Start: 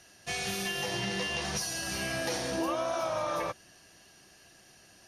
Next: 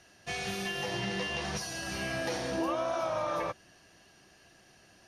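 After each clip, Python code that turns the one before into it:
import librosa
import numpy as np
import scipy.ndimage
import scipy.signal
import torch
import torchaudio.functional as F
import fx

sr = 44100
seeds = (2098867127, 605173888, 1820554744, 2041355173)

y = fx.high_shelf(x, sr, hz=5500.0, db=-10.0)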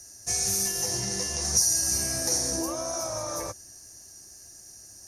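y = fx.curve_eq(x, sr, hz=(100.0, 160.0, 260.0, 1300.0, 2100.0, 3100.0, 6000.0), db=(0, -12, -7, -13, -13, -21, 13))
y = y * librosa.db_to_amplitude(8.5)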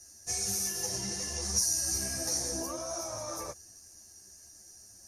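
y = fx.ensemble(x, sr)
y = y * librosa.db_to_amplitude(-2.5)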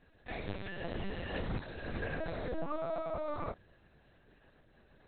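y = fx.lpc_vocoder(x, sr, seeds[0], excitation='pitch_kept', order=8)
y = y * librosa.db_to_amplitude(3.0)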